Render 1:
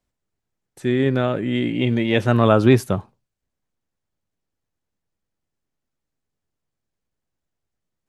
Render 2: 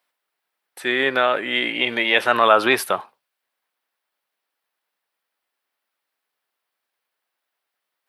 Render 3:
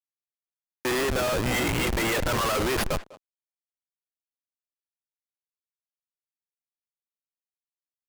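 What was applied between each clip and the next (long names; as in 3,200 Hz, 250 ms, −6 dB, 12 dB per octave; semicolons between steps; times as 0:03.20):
high-pass filter 900 Hz 12 dB per octave; parametric band 6,800 Hz −13 dB 0.68 octaves; in parallel at +1.5 dB: brickwall limiter −20 dBFS, peak gain reduction 11 dB; on the sum: level +5 dB
spectral envelope exaggerated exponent 1.5; comparator with hysteresis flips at −24 dBFS; far-end echo of a speakerphone 200 ms, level −14 dB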